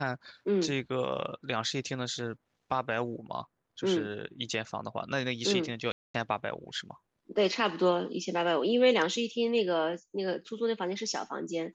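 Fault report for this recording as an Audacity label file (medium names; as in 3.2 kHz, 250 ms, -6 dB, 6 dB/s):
5.920000	6.140000	dropout 224 ms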